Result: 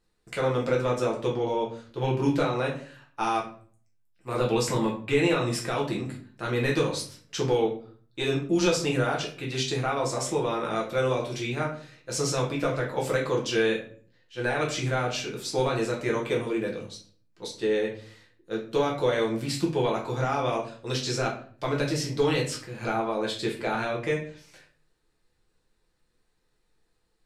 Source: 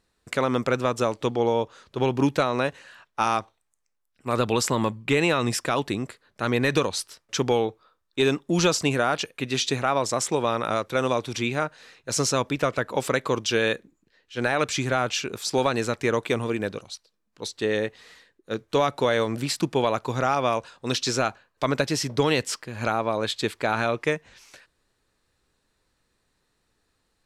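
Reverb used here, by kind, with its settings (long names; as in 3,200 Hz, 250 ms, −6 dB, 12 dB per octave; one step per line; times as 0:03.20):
rectangular room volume 41 cubic metres, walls mixed, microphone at 0.85 metres
level −8.5 dB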